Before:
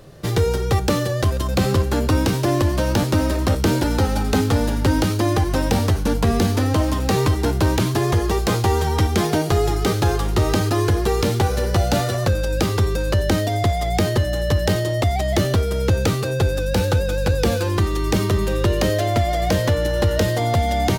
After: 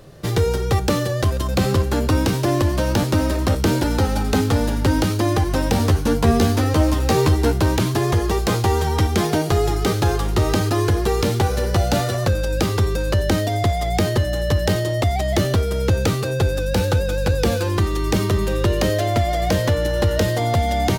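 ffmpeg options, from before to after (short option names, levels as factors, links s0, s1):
-filter_complex "[0:a]asettb=1/sr,asplit=3[s0][s1][s2];[s0]atrim=end=5.784[s3];[s1]atrim=start=5.78:end=7.53,asetpts=PTS-STARTPTS,afade=t=in:d=0.004:c=qsin,afade=t=out:st=1.746:d=0.004:c=qsin,asplit=2[s4][s5];[s5]adelay=13,volume=0.562[s6];[s4][s6]amix=inputs=2:normalize=0,atrim=end_sample=77175[s7];[s2]atrim=start=7.526[s8];[s3][s7]acrossfade=d=0.004:c1=hsin:c2=qsin[s9];[s9][s8]acrossfade=d=0.004:c1=qsin:c2=hsin"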